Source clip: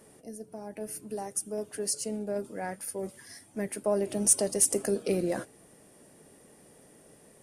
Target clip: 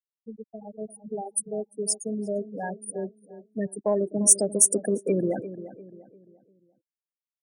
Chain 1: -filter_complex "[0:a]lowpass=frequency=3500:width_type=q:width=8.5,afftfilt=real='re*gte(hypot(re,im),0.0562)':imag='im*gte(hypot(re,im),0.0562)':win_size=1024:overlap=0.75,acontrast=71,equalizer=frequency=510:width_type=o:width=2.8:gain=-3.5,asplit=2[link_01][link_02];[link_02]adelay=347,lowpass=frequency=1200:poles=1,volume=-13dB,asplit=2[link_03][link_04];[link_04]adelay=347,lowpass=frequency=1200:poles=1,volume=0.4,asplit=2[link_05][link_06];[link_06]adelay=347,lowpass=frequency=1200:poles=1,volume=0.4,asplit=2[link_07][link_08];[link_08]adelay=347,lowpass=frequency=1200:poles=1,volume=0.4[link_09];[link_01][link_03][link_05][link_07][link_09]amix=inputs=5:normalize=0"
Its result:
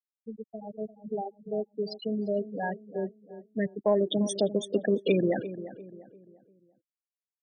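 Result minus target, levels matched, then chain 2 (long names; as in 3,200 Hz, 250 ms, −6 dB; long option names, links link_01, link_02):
4,000 Hz band +10.0 dB
-filter_complex "[0:a]afftfilt=real='re*gte(hypot(re,im),0.0562)':imag='im*gte(hypot(re,im),0.0562)':win_size=1024:overlap=0.75,acontrast=71,equalizer=frequency=510:width_type=o:width=2.8:gain=-3.5,asplit=2[link_01][link_02];[link_02]adelay=347,lowpass=frequency=1200:poles=1,volume=-13dB,asplit=2[link_03][link_04];[link_04]adelay=347,lowpass=frequency=1200:poles=1,volume=0.4,asplit=2[link_05][link_06];[link_06]adelay=347,lowpass=frequency=1200:poles=1,volume=0.4,asplit=2[link_07][link_08];[link_08]adelay=347,lowpass=frequency=1200:poles=1,volume=0.4[link_09];[link_01][link_03][link_05][link_07][link_09]amix=inputs=5:normalize=0"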